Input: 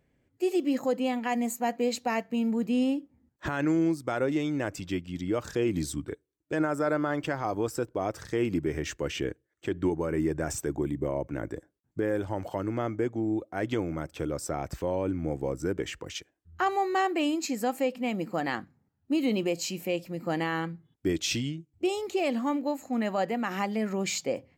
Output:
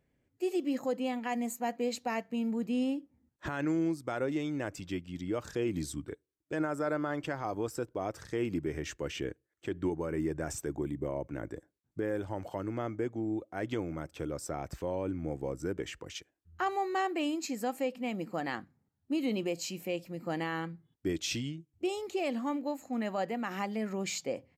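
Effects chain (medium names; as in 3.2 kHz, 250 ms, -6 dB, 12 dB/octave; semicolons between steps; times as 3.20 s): resampled via 32 kHz; trim -5 dB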